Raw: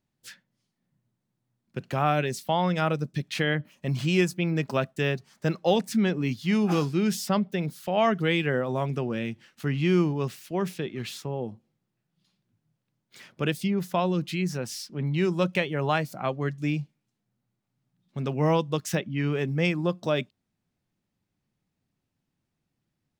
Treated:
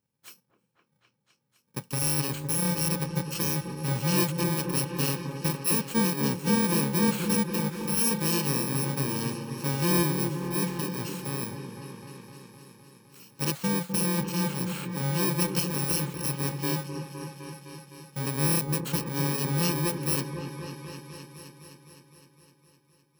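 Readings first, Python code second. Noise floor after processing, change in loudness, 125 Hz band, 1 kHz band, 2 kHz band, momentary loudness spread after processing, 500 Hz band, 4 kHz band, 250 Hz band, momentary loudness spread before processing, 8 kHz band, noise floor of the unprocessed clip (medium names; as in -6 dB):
-71 dBFS, 0.0 dB, -0.5 dB, -4.0 dB, -3.5 dB, 16 LU, -6.0 dB, +1.5 dB, -1.5 dB, 9 LU, +12.0 dB, -81 dBFS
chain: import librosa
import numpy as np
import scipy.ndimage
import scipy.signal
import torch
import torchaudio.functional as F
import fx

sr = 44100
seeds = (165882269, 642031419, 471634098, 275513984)

p1 = fx.bit_reversed(x, sr, seeds[0], block=64)
p2 = scipy.signal.sosfilt(scipy.signal.butter(2, 84.0, 'highpass', fs=sr, output='sos'), p1)
p3 = fx.high_shelf(p2, sr, hz=6500.0, db=-4.0)
p4 = 10.0 ** (-13.5 / 20.0) * np.tanh(p3 / 10.0 ** (-13.5 / 20.0))
y = p4 + fx.echo_opening(p4, sr, ms=256, hz=750, octaves=1, feedback_pct=70, wet_db=-6, dry=0)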